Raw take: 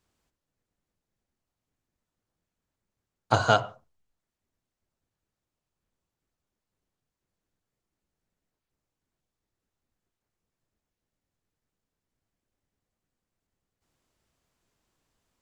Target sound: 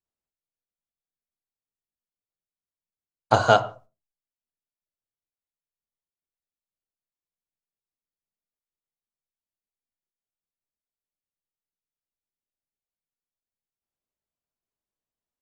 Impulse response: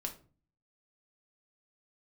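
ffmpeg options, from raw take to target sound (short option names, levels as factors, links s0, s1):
-filter_complex "[0:a]agate=range=0.0708:threshold=0.00224:ratio=16:detection=peak,equalizer=f=620:w=1:g=5,asplit=2[s0][s1];[1:a]atrim=start_sample=2205,afade=t=out:st=0.23:d=0.01,atrim=end_sample=10584[s2];[s1][s2]afir=irnorm=-1:irlink=0,volume=0.473[s3];[s0][s3]amix=inputs=2:normalize=0,volume=0.841"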